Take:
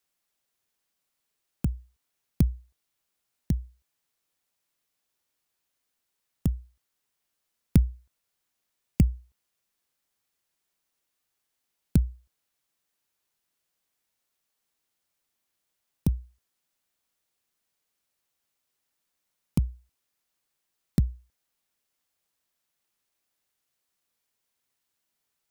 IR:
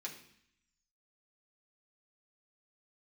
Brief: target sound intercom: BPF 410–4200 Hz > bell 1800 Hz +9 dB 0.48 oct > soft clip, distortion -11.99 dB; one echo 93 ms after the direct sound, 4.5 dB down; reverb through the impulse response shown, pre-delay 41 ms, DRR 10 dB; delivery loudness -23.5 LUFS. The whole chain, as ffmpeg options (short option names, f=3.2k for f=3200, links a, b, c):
-filter_complex "[0:a]aecho=1:1:93:0.596,asplit=2[a][b];[1:a]atrim=start_sample=2205,adelay=41[c];[b][c]afir=irnorm=-1:irlink=0,volume=-8.5dB[d];[a][d]amix=inputs=2:normalize=0,highpass=410,lowpass=4.2k,equalizer=f=1.8k:t=o:w=0.48:g=9,asoftclip=threshold=-26dB,volume=23.5dB"